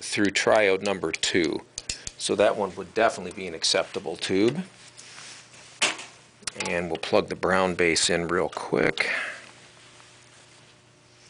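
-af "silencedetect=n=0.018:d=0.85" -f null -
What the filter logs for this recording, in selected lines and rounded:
silence_start: 10.00
silence_end: 11.29 | silence_duration: 1.29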